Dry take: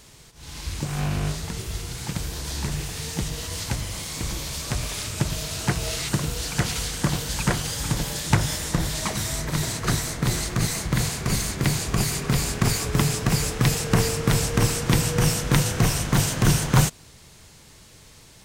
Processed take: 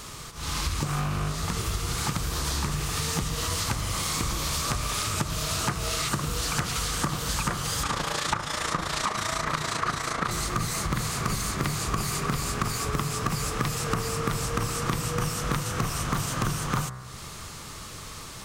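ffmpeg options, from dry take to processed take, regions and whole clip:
-filter_complex "[0:a]asettb=1/sr,asplit=3[s0][s1][s2];[s0]atrim=end=7.834[s3];[s1]atrim=start=7.83:end=10.31,asetpts=PTS-STARTPTS,afade=t=in:d=0.004:c=qsin,afade=t=out:st=2.476:d=0.004:c=qsin,lowpass=12000,asplit=2[s4][s5];[s5]highpass=f=720:p=1,volume=5.01,asoftclip=type=tanh:threshold=0.708[s6];[s4][s6]amix=inputs=2:normalize=0,lowpass=f=2400:p=1,volume=0.501,tremolo=f=28:d=0.71[s7];[s2]atrim=start=10.306[s8];[s3][s7]acrossfade=d=0.004:c1=hsin:c2=qsin[s9];[s9][s8]acrossfade=d=0.004:c1=qsin:c2=hsin,equalizer=f=1200:w=4:g=13,bandreject=f=63.38:t=h:w=4,bandreject=f=126.76:t=h:w=4,bandreject=f=190.14:t=h:w=4,bandreject=f=253.52:t=h:w=4,bandreject=f=316.9:t=h:w=4,bandreject=f=380.28:t=h:w=4,bandreject=f=443.66:t=h:w=4,bandreject=f=507.04:t=h:w=4,bandreject=f=570.42:t=h:w=4,bandreject=f=633.8:t=h:w=4,bandreject=f=697.18:t=h:w=4,bandreject=f=760.56:t=h:w=4,bandreject=f=823.94:t=h:w=4,bandreject=f=887.32:t=h:w=4,bandreject=f=950.7:t=h:w=4,bandreject=f=1014.08:t=h:w=4,bandreject=f=1077.46:t=h:w=4,bandreject=f=1140.84:t=h:w=4,bandreject=f=1204.22:t=h:w=4,bandreject=f=1267.6:t=h:w=4,bandreject=f=1330.98:t=h:w=4,bandreject=f=1394.36:t=h:w=4,bandreject=f=1457.74:t=h:w=4,bandreject=f=1521.12:t=h:w=4,bandreject=f=1584.5:t=h:w=4,bandreject=f=1647.88:t=h:w=4,bandreject=f=1711.26:t=h:w=4,bandreject=f=1774.64:t=h:w=4,bandreject=f=1838.02:t=h:w=4,bandreject=f=1901.4:t=h:w=4,bandreject=f=1964.78:t=h:w=4,bandreject=f=2028.16:t=h:w=4,bandreject=f=2091.54:t=h:w=4,bandreject=f=2154.92:t=h:w=4,bandreject=f=2218.3:t=h:w=4,acompressor=threshold=0.0224:ratio=12,volume=2.66"

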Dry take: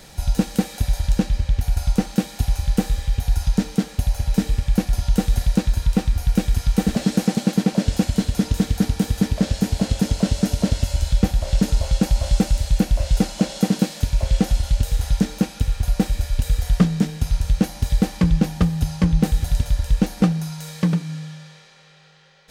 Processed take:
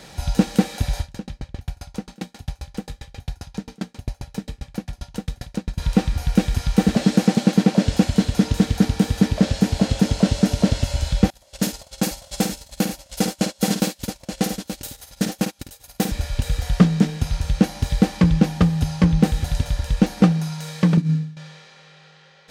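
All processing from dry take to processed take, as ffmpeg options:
-filter_complex "[0:a]asettb=1/sr,asplit=3[s0][s1][s2];[s0]atrim=end=1.014[s3];[s1]atrim=start=1.01:end=5.78,asetpts=PTS-STARTPTS,afade=t=in:d=0.004:c=qsin,afade=t=out:st=4.766:d=0.004:c=qsin,bandreject=f=60:t=h:w=6,bandreject=f=120:t=h:w=6,bandreject=f=180:t=h:w=6,bandreject=f=240:t=h:w=6,aeval=exprs='val(0)*pow(10,-36*if(lt(mod(7.5*n/s,1),2*abs(7.5)/1000),1-mod(7.5*n/s,1)/(2*abs(7.5)/1000),(mod(7.5*n/s,1)-2*abs(7.5)/1000)/(1-2*abs(7.5)/1000))/20)':c=same[s4];[s2]atrim=start=5.776[s5];[s3][s4]acrossfade=d=0.004:c1=hsin:c2=qsin[s6];[s6][s5]acrossfade=d=0.004:c1=qsin:c2=hsin,asettb=1/sr,asplit=3[s7][s8][s9];[s7]atrim=end=11.304[s10];[s8]atrim=start=11.3:end=16.12,asetpts=PTS-STARTPTS,afade=t=in:d=0.004:c=qsin,afade=t=out:st=4.816:d=0.004:c=qsin,aemphasis=mode=production:type=bsi,agate=range=0.0398:threshold=0.0562:ratio=16:release=100:detection=peak,aecho=1:1:52|877:0.422|0.335,atrim=end_sample=212562[s11];[s9]atrim=start=16.116[s12];[s10][s11]acrossfade=d=0.004:c1=hsin:c2=qsin[s13];[s13][s12]acrossfade=d=0.004:c1=qsin:c2=hsin,asettb=1/sr,asplit=3[s14][s15][s16];[s14]atrim=end=20.974[s17];[s15]atrim=start=20.97:end=21.37,asetpts=PTS-STARTPTS,afade=t=in:d=0.004:c=qsin,afade=t=out:st=0.396:d=0.004:c=qsin,lowshelf=f=370:t=q:w=1.5:g=11.5,agate=range=0.0224:threshold=0.251:ratio=3:release=100:detection=peak,bandreject=f=3200:w=17[s18];[s16]atrim=start=21.366[s19];[s17][s18]acrossfade=d=0.004:c1=hsin:c2=qsin[s20];[s20][s19]acrossfade=d=0.004:c1=qsin:c2=hsin,highpass=f=99:p=1,highshelf=f=8500:g=-10,volume=1.5"

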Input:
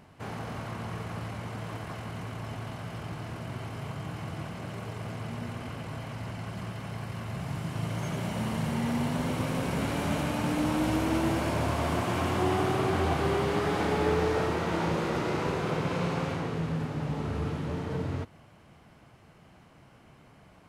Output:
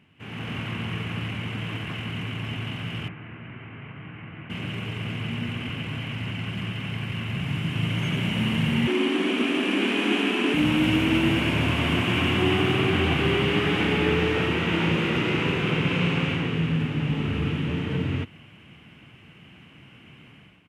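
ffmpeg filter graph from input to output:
-filter_complex "[0:a]asettb=1/sr,asplit=3[s0][s1][s2];[s0]atrim=end=3.084[s3];[s1]atrim=start=3.08:end=4.5,asetpts=PTS-STARTPTS,afade=t=in:d=0.004:c=qsin,afade=t=out:st=1.416:d=0.004:c=qsin,lowpass=f=2200:w=0.5412,lowpass=f=2200:w=1.3066,acrossover=split=200|1100[s4][s5][s6];[s4]acompressor=threshold=0.00316:ratio=4[s7];[s5]acompressor=threshold=0.00316:ratio=4[s8];[s6]acompressor=threshold=0.00224:ratio=4[s9];[s7][s8][s9]amix=inputs=3:normalize=0[s10];[s2]atrim=start=4.496[s11];[s3][s10]acrossfade=d=0.004:c1=hsin:c2=qsin[s12];[s12][s11]acrossfade=d=0.004:c1=qsin:c2=hsin,asettb=1/sr,asplit=3[s13][s14][s15];[s13]atrim=end=8.874[s16];[s14]atrim=start=8.87:end=10.54,asetpts=PTS-STARTPTS,afade=t=in:d=0.004:c=qsin,afade=t=out:st=1.666:d=0.004:c=qsin,lowpass=f=11000:w=0.5412,lowpass=f=11000:w=1.3066,afreqshift=130[s17];[s15]atrim=start=10.536[s18];[s16][s17]acrossfade=d=0.004:c1=hsin:c2=qsin[s19];[s19][s18]acrossfade=d=0.004:c1=qsin:c2=hsin,highpass=88,dynaudnorm=f=140:g=5:m=3.55,firequalizer=gain_entry='entry(280,0);entry(620,-11);entry(2800,10);entry(4200,-9)':delay=0.05:min_phase=1,volume=0.668"

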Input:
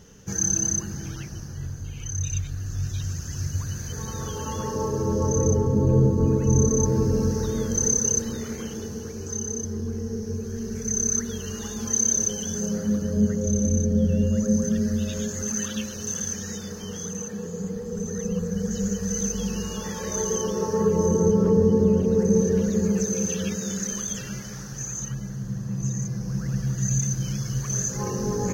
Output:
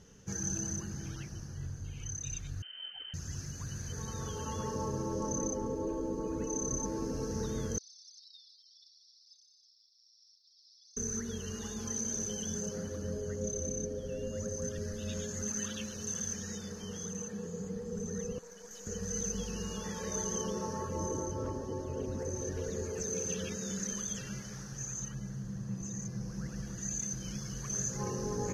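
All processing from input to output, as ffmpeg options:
-filter_complex "[0:a]asettb=1/sr,asplit=3[s0][s1][s2];[s0]atrim=end=2.624[s3];[s1]atrim=start=2.62:end=3.14,asetpts=PTS-STARTPTS,afade=t=in:d=0.004:c=qsin,afade=t=out:st=0.516:d=0.004:c=qsin,highpass=f=140:w=0.5412,highpass=f=140:w=1.3066,lowpass=f=2700:t=q:w=0.5098,lowpass=f=2700:t=q:w=0.6013,lowpass=f=2700:t=q:w=0.9,lowpass=f=2700:t=q:w=2.563,afreqshift=-3200[s4];[s2]atrim=start=3.136[s5];[s3][s4]acrossfade=d=0.004:c1=hsin:c2=qsin[s6];[s6][s5]acrossfade=d=0.004:c1=qsin:c2=hsin,asettb=1/sr,asplit=3[s7][s8][s9];[s7]atrim=end=7.784[s10];[s8]atrim=start=7.78:end=10.97,asetpts=PTS-STARTPTS,afade=t=in:d=0.004:c=qsin,afade=t=out:st=3.186:d=0.004:c=qsin,asuperpass=centerf=4400:order=20:qfactor=2,aphaser=in_gain=1:out_gain=1:delay=1.3:decay=0.35:speed=1.9:type=triangular[s11];[s9]atrim=start=10.966[s12];[s10][s11]acrossfade=d=0.004:c1=hsin:c2=qsin[s13];[s13][s12]acrossfade=d=0.004:c1=qsin:c2=hsin,asettb=1/sr,asplit=3[s14][s15][s16];[s14]atrim=end=18.384[s17];[s15]atrim=start=18.38:end=18.87,asetpts=PTS-STARTPTS,afade=t=in:d=0.004:c=qsin,afade=t=out:st=0.486:d=0.004:c=qsin,highpass=690,aeval=exprs='(tanh(50.1*val(0)+0.65)-tanh(0.65))/50.1':c=same[s18];[s16]atrim=start=18.866[s19];[s17][s18]acrossfade=d=0.004:c1=hsin:c2=qsin[s20];[s20][s19]acrossfade=d=0.004:c1=qsin:c2=hsin,afftfilt=real='re*lt(hypot(re,im),0.447)':imag='im*lt(hypot(re,im),0.447)':win_size=1024:overlap=0.75,lowpass=f=12000:w=0.5412,lowpass=f=12000:w=1.3066,volume=0.422"

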